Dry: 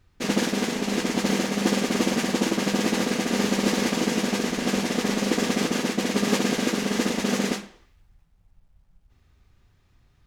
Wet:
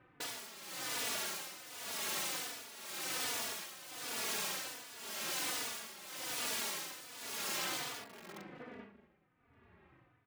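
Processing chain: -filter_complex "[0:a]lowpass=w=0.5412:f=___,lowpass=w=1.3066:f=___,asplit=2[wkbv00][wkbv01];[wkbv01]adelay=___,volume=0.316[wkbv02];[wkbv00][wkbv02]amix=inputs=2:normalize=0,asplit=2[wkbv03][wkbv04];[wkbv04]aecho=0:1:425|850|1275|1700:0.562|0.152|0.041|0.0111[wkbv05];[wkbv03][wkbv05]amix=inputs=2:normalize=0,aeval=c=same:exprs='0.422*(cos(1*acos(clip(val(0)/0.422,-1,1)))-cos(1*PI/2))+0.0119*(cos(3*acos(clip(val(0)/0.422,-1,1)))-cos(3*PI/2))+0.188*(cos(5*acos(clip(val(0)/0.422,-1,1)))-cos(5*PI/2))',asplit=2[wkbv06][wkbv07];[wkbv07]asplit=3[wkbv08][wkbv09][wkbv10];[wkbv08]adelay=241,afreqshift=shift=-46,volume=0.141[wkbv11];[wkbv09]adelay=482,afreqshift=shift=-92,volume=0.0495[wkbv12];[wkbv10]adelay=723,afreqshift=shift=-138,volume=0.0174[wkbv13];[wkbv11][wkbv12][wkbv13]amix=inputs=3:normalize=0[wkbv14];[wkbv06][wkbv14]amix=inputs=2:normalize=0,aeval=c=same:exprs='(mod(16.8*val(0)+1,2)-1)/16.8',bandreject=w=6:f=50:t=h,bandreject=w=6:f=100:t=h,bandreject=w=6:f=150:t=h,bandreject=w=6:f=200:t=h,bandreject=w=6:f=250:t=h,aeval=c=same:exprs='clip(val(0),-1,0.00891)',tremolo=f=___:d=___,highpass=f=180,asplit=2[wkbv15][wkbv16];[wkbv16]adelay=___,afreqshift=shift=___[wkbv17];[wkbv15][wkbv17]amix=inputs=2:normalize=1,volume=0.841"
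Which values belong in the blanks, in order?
2400, 2400, 39, 0.92, 0.81, 3.4, -1.3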